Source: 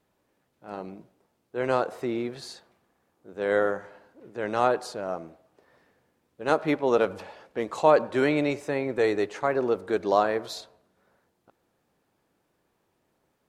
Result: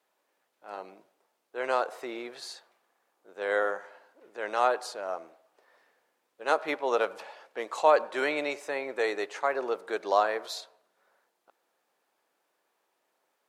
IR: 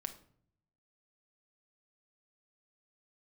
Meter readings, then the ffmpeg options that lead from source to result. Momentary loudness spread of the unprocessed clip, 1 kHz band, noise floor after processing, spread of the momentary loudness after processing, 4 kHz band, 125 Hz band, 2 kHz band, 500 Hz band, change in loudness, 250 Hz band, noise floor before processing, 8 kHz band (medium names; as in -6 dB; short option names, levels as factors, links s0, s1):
16 LU, -1.0 dB, -77 dBFS, 17 LU, 0.0 dB, under -20 dB, 0.0 dB, -4.5 dB, -3.5 dB, -11.5 dB, -74 dBFS, no reading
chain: -af "highpass=580"